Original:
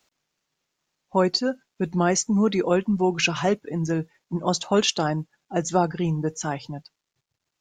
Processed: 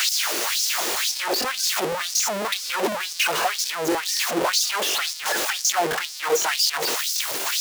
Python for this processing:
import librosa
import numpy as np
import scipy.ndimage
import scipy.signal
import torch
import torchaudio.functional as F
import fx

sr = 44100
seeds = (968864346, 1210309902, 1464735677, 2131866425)

y = np.sign(x) * np.sqrt(np.mean(np.square(x)))
y = fx.filter_lfo_highpass(y, sr, shape='sine', hz=2.0, low_hz=370.0, high_hz=5400.0, q=3.1)
y = fx.buffer_crackle(y, sr, first_s=0.65, period_s=0.25, block=1024, kind='repeat')
y = y * 10.0 ** (1.5 / 20.0)